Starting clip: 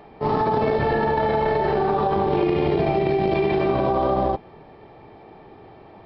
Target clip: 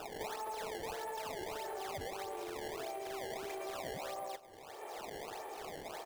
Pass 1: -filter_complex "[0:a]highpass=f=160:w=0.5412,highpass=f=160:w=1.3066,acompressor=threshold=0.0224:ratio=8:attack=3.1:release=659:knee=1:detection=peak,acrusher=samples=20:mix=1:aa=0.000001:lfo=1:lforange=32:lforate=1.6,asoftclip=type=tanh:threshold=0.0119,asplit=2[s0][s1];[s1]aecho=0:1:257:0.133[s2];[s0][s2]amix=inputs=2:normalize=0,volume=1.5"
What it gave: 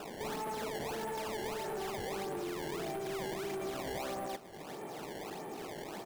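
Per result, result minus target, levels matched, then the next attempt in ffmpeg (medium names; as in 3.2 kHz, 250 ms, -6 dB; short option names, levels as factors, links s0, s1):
compression: peak gain reduction -5 dB; 125 Hz band +5.0 dB
-filter_complex "[0:a]highpass=f=160:w=0.5412,highpass=f=160:w=1.3066,acompressor=threshold=0.01:ratio=8:attack=3.1:release=659:knee=1:detection=peak,acrusher=samples=20:mix=1:aa=0.000001:lfo=1:lforange=32:lforate=1.6,asoftclip=type=tanh:threshold=0.0119,asplit=2[s0][s1];[s1]aecho=0:1:257:0.133[s2];[s0][s2]amix=inputs=2:normalize=0,volume=1.5"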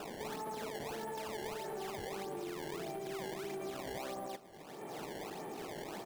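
125 Hz band +4.5 dB
-filter_complex "[0:a]highpass=f=450:w=0.5412,highpass=f=450:w=1.3066,acompressor=threshold=0.01:ratio=8:attack=3.1:release=659:knee=1:detection=peak,acrusher=samples=20:mix=1:aa=0.000001:lfo=1:lforange=32:lforate=1.6,asoftclip=type=tanh:threshold=0.0119,asplit=2[s0][s1];[s1]aecho=0:1:257:0.133[s2];[s0][s2]amix=inputs=2:normalize=0,volume=1.5"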